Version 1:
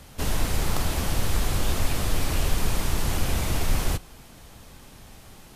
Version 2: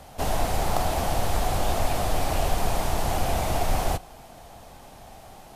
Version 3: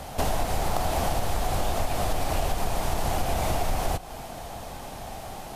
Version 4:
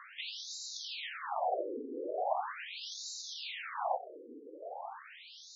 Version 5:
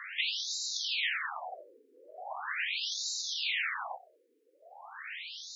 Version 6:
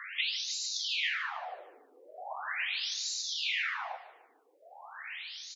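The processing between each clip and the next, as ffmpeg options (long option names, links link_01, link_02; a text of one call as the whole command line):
ffmpeg -i in.wav -af "equalizer=frequency=720:width_type=o:width=0.78:gain=14.5,volume=-2dB" out.wav
ffmpeg -i in.wav -af "acompressor=threshold=-30dB:ratio=6,volume=8dB" out.wav
ffmpeg -i in.wav -af "afftfilt=real='re*between(b*sr/1024,350*pow(5300/350,0.5+0.5*sin(2*PI*0.4*pts/sr))/1.41,350*pow(5300/350,0.5+0.5*sin(2*PI*0.4*pts/sr))*1.41)':imag='im*between(b*sr/1024,350*pow(5300/350,0.5+0.5*sin(2*PI*0.4*pts/sr))/1.41,350*pow(5300/350,0.5+0.5*sin(2*PI*0.4*pts/sr))*1.41)':win_size=1024:overlap=0.75" out.wav
ffmpeg -i in.wav -af "highpass=frequency=1900:width_type=q:width=1.9,volume=6.5dB" out.wav
ffmpeg -i in.wav -af "aecho=1:1:149|298|447|596:0.178|0.0747|0.0314|0.0132" out.wav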